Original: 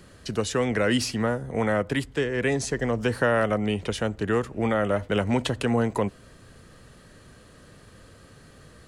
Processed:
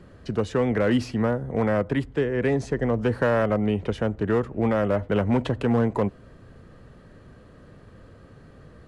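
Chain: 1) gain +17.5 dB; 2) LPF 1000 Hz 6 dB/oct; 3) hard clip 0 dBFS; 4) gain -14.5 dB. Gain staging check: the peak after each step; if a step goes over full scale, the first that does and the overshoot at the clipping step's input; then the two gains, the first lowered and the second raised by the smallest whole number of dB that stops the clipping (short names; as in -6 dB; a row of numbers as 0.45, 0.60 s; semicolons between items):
+6.0, +4.5, 0.0, -14.5 dBFS; step 1, 4.5 dB; step 1 +12.5 dB, step 4 -9.5 dB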